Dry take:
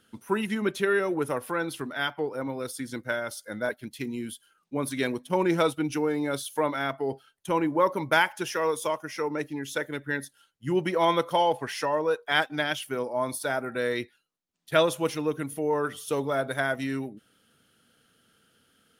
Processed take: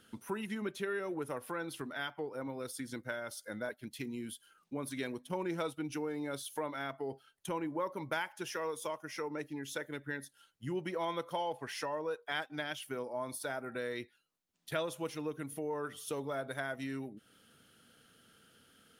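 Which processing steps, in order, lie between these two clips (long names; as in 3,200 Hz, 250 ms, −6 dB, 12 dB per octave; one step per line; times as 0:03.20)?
downward compressor 2 to 1, threshold −46 dBFS, peak gain reduction 16 dB
level +1 dB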